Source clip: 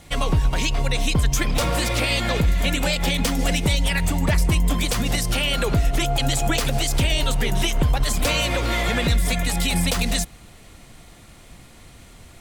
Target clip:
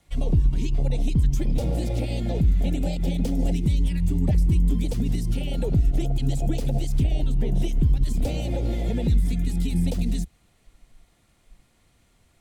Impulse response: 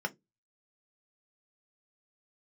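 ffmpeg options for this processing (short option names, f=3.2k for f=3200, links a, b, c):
-filter_complex "[0:a]asettb=1/sr,asplit=3[a][b][c];[a]atrim=end=7.034[d];[b]atrim=start=7.03:end=7.55,asetpts=PTS-STARTPTS,afade=t=in:d=0.004:c=qsin,afade=t=out:st=0.516:d=0.004:c=qsin,highshelf=f=4k:g=-7[e];[c]atrim=start=7.546[f];[d][e]acrossfade=d=0.004:c1=hsin:c2=qsin[g];[g][f]acrossfade=d=0.004:c1=qsin:c2=hsin,acrossover=split=240|560|2200[h][i][j][k];[i]asoftclip=type=tanh:threshold=-25.5dB[l];[j]acompressor=threshold=-40dB:ratio=8[m];[h][l][m][k]amix=inputs=4:normalize=0,afwtdn=0.0708"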